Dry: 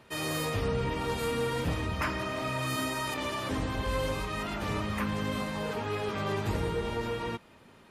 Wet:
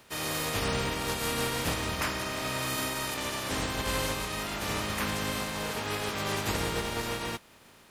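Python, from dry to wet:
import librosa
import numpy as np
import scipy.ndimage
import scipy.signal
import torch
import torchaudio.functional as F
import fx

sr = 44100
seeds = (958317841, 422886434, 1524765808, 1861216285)

y = fx.spec_flatten(x, sr, power=0.53)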